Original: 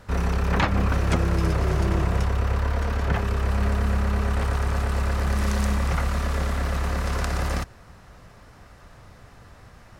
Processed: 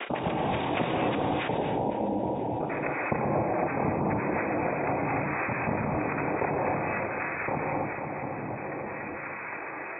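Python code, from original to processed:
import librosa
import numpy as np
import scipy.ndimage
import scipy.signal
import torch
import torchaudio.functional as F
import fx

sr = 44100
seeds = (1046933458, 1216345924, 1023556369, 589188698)

y = fx.spec_dropout(x, sr, seeds[0], share_pct=73)
y = scipy.signal.sosfilt(scipy.signal.butter(2, 140.0, 'highpass', fs=sr, output='sos'), y)
y = fx.peak_eq(y, sr, hz=460.0, db=13.0, octaves=0.33)
y = fx.notch(y, sr, hz=1300.0, q=5.2)
y = fx.noise_vocoder(y, sr, seeds[1], bands=4)
y = fx.chopper(y, sr, hz=3.9, depth_pct=60, duty_pct=20)
y = fx.brickwall_lowpass(y, sr, high_hz=fx.steps((0.0, 3800.0), (1.47, 1000.0), (2.59, 2600.0)))
y = fx.echo_feedback(y, sr, ms=499, feedback_pct=47, wet_db=-17.5)
y = fx.rev_gated(y, sr, seeds[2], gate_ms=310, shape='rising', drr_db=-2.0)
y = fx.env_flatten(y, sr, amount_pct=70)
y = y * librosa.db_to_amplitude(-1.5)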